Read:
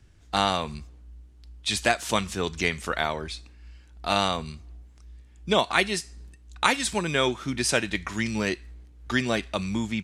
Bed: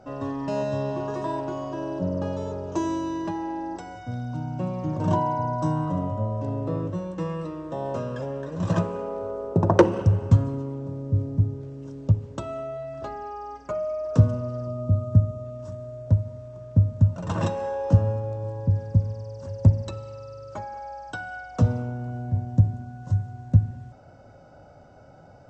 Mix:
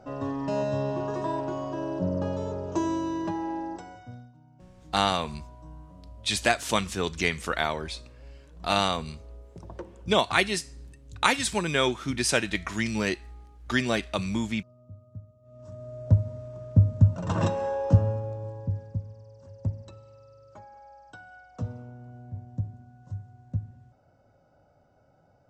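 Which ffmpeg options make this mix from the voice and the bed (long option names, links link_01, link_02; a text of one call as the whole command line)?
ffmpeg -i stem1.wav -i stem2.wav -filter_complex "[0:a]adelay=4600,volume=-0.5dB[link_01];[1:a]volume=24dB,afade=type=out:start_time=3.55:duration=0.78:silence=0.0630957,afade=type=in:start_time=15.42:duration=0.7:silence=0.0562341,afade=type=out:start_time=17.7:duration=1.33:silence=0.223872[link_02];[link_01][link_02]amix=inputs=2:normalize=0" out.wav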